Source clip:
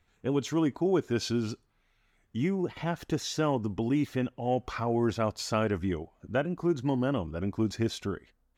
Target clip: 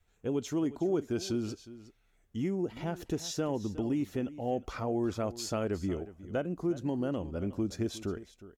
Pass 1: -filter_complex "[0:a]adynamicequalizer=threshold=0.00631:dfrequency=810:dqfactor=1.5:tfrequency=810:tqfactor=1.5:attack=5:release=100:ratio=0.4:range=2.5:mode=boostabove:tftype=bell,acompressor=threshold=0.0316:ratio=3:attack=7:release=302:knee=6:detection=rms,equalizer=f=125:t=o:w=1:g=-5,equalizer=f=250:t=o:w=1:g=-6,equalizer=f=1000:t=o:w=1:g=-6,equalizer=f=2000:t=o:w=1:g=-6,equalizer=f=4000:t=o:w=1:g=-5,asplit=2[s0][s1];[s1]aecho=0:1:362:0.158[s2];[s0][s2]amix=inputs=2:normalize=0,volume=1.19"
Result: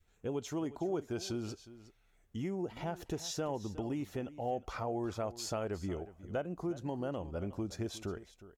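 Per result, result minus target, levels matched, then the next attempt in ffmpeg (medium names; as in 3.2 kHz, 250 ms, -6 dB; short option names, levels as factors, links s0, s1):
compression: peak gain reduction +4.5 dB; 1 kHz band +4.5 dB
-filter_complex "[0:a]adynamicequalizer=threshold=0.00631:dfrequency=810:dqfactor=1.5:tfrequency=810:tqfactor=1.5:attack=5:release=100:ratio=0.4:range=2.5:mode=boostabove:tftype=bell,acompressor=threshold=0.075:ratio=3:attack=7:release=302:knee=6:detection=rms,equalizer=f=125:t=o:w=1:g=-5,equalizer=f=250:t=o:w=1:g=-6,equalizer=f=1000:t=o:w=1:g=-6,equalizer=f=2000:t=o:w=1:g=-6,equalizer=f=4000:t=o:w=1:g=-5,asplit=2[s0][s1];[s1]aecho=0:1:362:0.158[s2];[s0][s2]amix=inputs=2:normalize=0,volume=1.19"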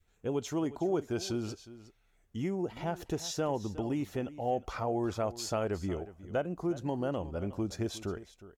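1 kHz band +4.5 dB
-filter_complex "[0:a]adynamicequalizer=threshold=0.00631:dfrequency=260:dqfactor=1.5:tfrequency=260:tqfactor=1.5:attack=5:release=100:ratio=0.4:range=2.5:mode=boostabove:tftype=bell,acompressor=threshold=0.075:ratio=3:attack=7:release=302:knee=6:detection=rms,equalizer=f=125:t=o:w=1:g=-5,equalizer=f=250:t=o:w=1:g=-6,equalizer=f=1000:t=o:w=1:g=-6,equalizer=f=2000:t=o:w=1:g=-6,equalizer=f=4000:t=o:w=1:g=-5,asplit=2[s0][s1];[s1]aecho=0:1:362:0.158[s2];[s0][s2]amix=inputs=2:normalize=0,volume=1.19"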